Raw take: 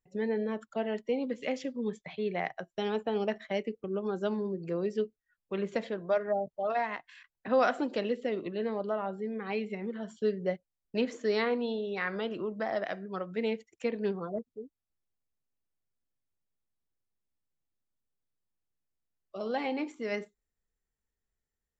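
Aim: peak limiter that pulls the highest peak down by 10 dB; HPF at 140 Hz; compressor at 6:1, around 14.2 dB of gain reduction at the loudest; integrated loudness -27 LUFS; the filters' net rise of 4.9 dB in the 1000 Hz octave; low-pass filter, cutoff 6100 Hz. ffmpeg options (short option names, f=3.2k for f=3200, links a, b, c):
-af "highpass=140,lowpass=6.1k,equalizer=f=1k:t=o:g=7,acompressor=threshold=-34dB:ratio=6,volume=15dB,alimiter=limit=-17.5dB:level=0:latency=1"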